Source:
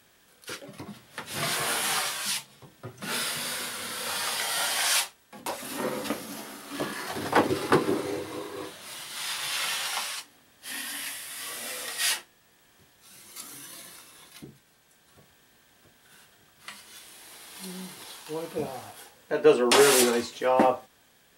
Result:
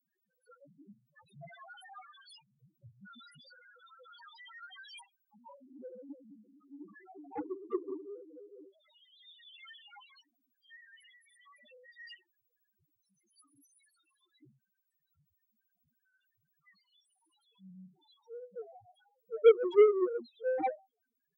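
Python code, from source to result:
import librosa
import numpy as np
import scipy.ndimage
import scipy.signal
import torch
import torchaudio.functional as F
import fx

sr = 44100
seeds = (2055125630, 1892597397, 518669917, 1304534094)

y = fx.spec_topn(x, sr, count=1)
y = fx.cheby_harmonics(y, sr, harmonics=(3, 7), levels_db=(-20, -25), full_scale_db=-16.0)
y = y * librosa.db_to_amplitude(4.5)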